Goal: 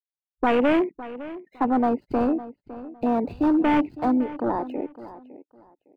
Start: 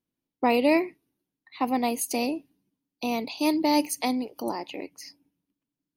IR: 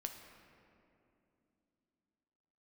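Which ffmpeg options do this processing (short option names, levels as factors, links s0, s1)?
-filter_complex "[0:a]afftfilt=real='re*between(b*sr/4096,150,5000)':imag='im*between(b*sr/4096,150,5000)':win_size=4096:overlap=0.75,bandreject=f=3300:w=9.9,afftfilt=real='re*gte(hypot(re,im),0.00562)':imag='im*gte(hypot(re,im),0.00562)':win_size=1024:overlap=0.75,acrossover=split=520|3400[s0][s1][s2];[s2]acrusher=samples=38:mix=1:aa=0.000001[s3];[s0][s1][s3]amix=inputs=3:normalize=0,asoftclip=type=hard:threshold=0.0668,afwtdn=0.0224,asplit=2[s4][s5];[s5]adelay=558,lowpass=f=3200:p=1,volume=0.168,asplit=2[s6][s7];[s7]adelay=558,lowpass=f=3200:p=1,volume=0.24[s8];[s4][s6][s8]amix=inputs=3:normalize=0,volume=2.24"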